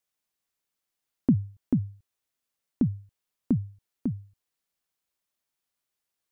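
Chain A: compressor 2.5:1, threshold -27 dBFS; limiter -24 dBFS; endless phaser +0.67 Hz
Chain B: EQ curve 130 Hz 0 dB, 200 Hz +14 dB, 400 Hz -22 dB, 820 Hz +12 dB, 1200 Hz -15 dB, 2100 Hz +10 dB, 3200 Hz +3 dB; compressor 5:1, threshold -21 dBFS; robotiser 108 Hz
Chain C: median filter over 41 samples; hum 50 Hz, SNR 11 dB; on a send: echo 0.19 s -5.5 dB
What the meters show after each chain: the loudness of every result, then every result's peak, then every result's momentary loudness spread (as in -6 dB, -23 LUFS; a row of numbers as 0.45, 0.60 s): -42.0, -31.5, -30.0 LUFS; -24.5, -13.5, -12.0 dBFS; 11, 16, 21 LU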